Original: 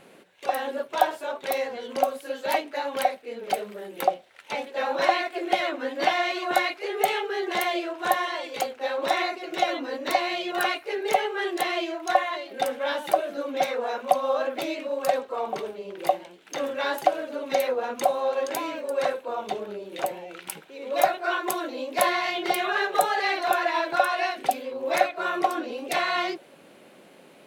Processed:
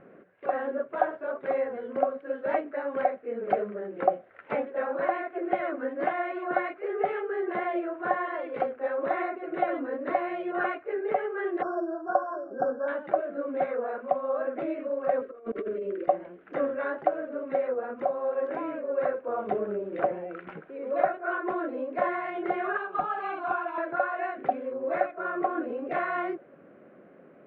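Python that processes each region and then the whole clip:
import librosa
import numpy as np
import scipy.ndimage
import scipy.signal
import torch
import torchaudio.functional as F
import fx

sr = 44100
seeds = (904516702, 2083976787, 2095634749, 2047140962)

y = fx.chain(x, sr, fx.sample_sort(block=8),
    fx.brickwall_bandstop(low_hz=1700.0, high_hz=4800.0), at=(11.62, 12.88))
y = fx.chain(y, sr, fx.over_compress(threshold_db=-36.0, ratio=-0.5),
    fx.fixed_phaser(hz=350.0, stages=4), at=(15.21, 16.08))
y = fx.chain(y, sr, fx.fixed_phaser(hz=1900.0, stages=6),
    fx.overload_stage(gain_db=16.0), at=(22.77, 23.78))
y = scipy.signal.sosfilt(scipy.signal.butter(4, 1600.0, 'lowpass', fs=sr, output='sos'), y)
y = fx.peak_eq(y, sr, hz=890.0, db=-12.0, octaves=0.37)
y = fx.rider(y, sr, range_db=10, speed_s=0.5)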